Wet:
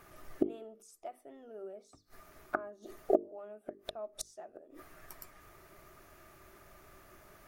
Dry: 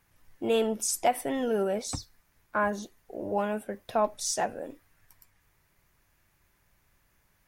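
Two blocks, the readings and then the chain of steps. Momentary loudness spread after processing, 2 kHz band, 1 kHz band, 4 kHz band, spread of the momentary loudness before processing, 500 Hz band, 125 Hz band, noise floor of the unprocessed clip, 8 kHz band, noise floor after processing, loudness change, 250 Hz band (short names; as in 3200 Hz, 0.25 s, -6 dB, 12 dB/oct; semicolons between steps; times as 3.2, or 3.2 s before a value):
23 LU, -11.5 dB, -14.5 dB, -14.5 dB, 13 LU, -9.0 dB, under -15 dB, -70 dBFS, -18.0 dB, -65 dBFS, -10.0 dB, -7.5 dB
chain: flipped gate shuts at -29 dBFS, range -37 dB; notches 50/100/150/200/250/300/350/400/450 Hz; small resonant body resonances 380/620/1200 Hz, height 15 dB, ringing for 30 ms; gain +7.5 dB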